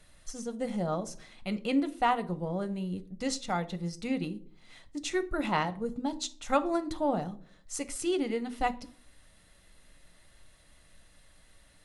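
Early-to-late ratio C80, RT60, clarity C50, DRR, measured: 22.5 dB, 0.50 s, 18.0 dB, 9.5 dB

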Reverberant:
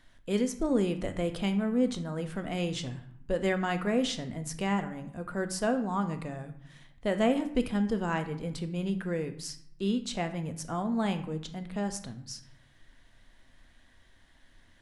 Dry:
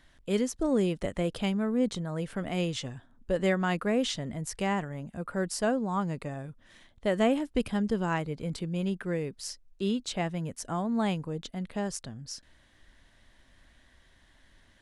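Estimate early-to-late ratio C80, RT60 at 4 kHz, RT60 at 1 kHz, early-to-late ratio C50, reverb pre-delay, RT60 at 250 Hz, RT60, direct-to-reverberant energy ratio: 14.5 dB, 0.45 s, 0.75 s, 12.0 dB, 3 ms, 0.85 s, 0.70 s, 7.5 dB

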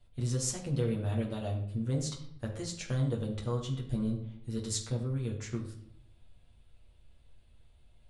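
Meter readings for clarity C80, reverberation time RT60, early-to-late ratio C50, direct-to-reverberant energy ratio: 11.0 dB, 0.65 s, 8.0 dB, −2.5 dB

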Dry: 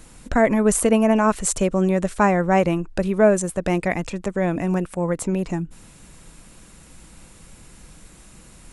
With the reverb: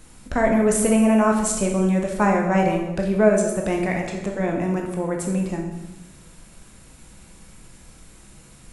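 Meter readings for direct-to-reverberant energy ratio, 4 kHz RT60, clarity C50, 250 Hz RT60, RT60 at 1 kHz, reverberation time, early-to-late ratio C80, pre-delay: 1.0 dB, 0.95 s, 5.0 dB, 1.3 s, 0.95 s, 1.0 s, 7.0 dB, 13 ms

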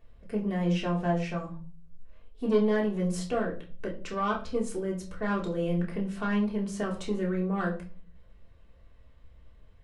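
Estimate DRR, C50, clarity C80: −3.0 dB, 10.5 dB, 15.5 dB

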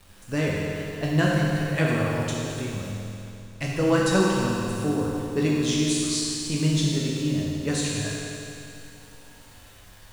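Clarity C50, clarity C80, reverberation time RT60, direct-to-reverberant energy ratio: −2.0 dB, −0.5 dB, 2.8 s, −5.0 dB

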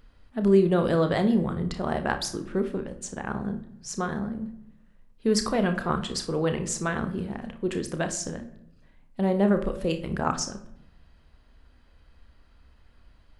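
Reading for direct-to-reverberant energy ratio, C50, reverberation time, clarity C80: 7.0 dB, 11.5 dB, 0.75 s, 15.5 dB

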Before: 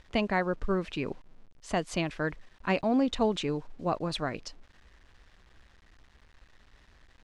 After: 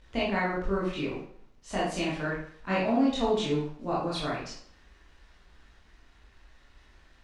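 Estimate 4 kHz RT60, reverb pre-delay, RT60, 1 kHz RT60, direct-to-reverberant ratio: 0.45 s, 15 ms, 0.60 s, 0.60 s, −7.5 dB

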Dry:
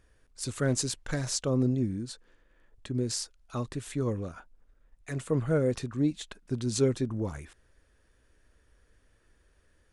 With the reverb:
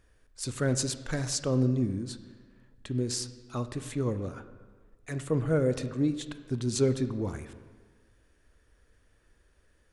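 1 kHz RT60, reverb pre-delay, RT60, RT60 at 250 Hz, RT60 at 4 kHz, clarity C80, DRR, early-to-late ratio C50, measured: 1.5 s, 26 ms, 1.5 s, 1.5 s, 1.1 s, 13.5 dB, 11.0 dB, 12.0 dB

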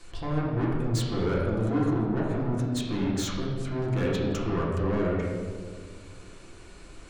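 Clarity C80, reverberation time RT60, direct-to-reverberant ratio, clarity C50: 2.5 dB, 2.0 s, −5.5 dB, 0.0 dB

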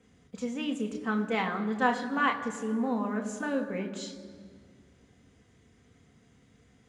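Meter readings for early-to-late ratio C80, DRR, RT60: 11.0 dB, 2.0 dB, 1.9 s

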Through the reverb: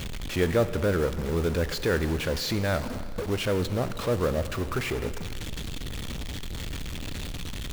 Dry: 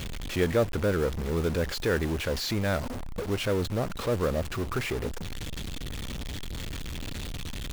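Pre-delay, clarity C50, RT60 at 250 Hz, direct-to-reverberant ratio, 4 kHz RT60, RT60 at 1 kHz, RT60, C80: 7 ms, 13.0 dB, 2.3 s, 12.0 dB, 2.0 s, 2.2 s, 2.2 s, 14.0 dB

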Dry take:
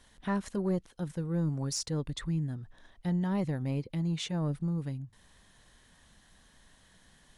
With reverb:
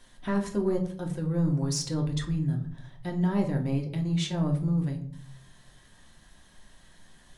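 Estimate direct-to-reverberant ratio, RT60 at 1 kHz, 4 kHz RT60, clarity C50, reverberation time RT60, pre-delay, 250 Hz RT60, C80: 1.5 dB, 0.50 s, 0.35 s, 10.5 dB, 0.55 s, 3 ms, 0.75 s, 14.5 dB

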